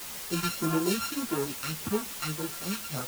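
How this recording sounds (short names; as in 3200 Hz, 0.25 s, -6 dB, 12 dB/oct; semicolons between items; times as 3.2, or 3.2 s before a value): a buzz of ramps at a fixed pitch in blocks of 32 samples; phasing stages 2, 1.7 Hz, lowest notch 480–4900 Hz; a quantiser's noise floor 6-bit, dither triangular; a shimmering, thickened sound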